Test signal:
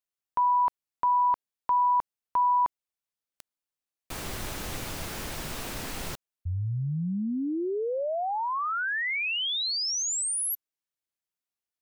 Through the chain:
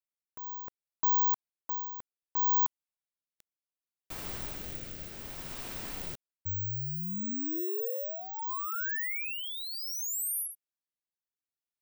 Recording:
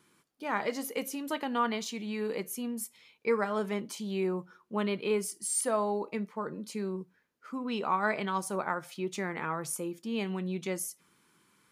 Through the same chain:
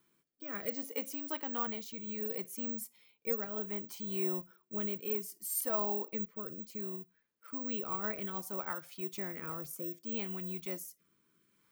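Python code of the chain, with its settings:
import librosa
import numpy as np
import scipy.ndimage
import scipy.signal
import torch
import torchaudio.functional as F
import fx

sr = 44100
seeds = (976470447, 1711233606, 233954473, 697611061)

y = fx.rotary(x, sr, hz=0.65)
y = (np.kron(scipy.signal.resample_poly(y, 1, 2), np.eye(2)[0]) * 2)[:len(y)]
y = y * librosa.db_to_amplitude(-6.0)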